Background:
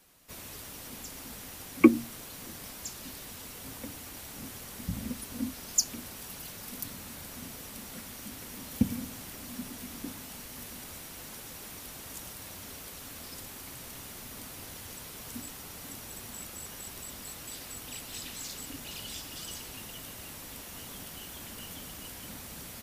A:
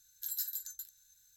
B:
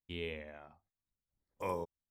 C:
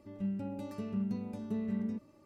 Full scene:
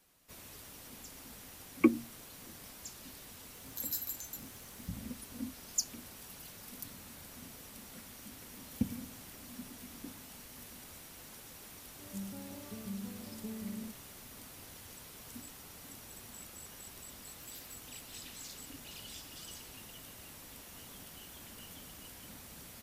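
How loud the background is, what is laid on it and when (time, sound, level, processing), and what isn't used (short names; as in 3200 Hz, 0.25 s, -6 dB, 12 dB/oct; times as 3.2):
background -7 dB
3.54 add A -0.5 dB
11.93 add C -7.5 dB
17.17 add A -17.5 dB
not used: B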